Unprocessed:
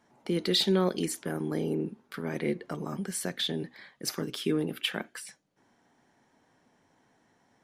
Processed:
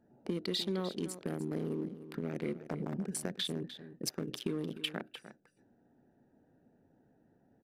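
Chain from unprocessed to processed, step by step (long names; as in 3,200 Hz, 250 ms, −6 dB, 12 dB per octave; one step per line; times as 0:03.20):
adaptive Wiener filter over 41 samples
downward compressor 4 to 1, threshold −37 dBFS, peak gain reduction 13.5 dB
on a send: single-tap delay 301 ms −13 dB
on the sum: level +3 dB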